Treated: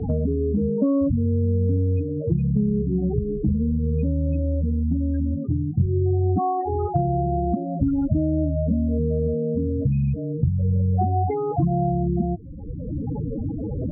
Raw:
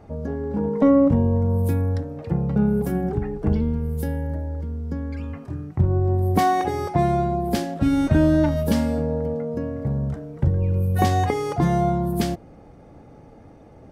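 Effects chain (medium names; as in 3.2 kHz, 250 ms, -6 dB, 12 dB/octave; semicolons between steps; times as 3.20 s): rattle on loud lows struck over -23 dBFS, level -18 dBFS; loudest bins only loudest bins 8; distance through air 450 m; three bands compressed up and down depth 100%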